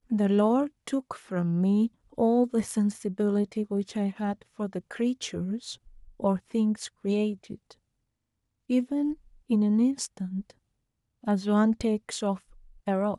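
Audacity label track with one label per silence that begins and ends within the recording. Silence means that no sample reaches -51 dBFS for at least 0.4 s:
7.730000	8.690000	silence
10.510000	11.230000	silence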